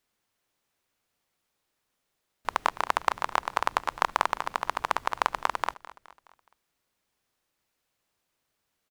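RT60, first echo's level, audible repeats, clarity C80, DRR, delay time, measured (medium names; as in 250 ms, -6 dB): no reverb, -18.0 dB, 3, no reverb, no reverb, 210 ms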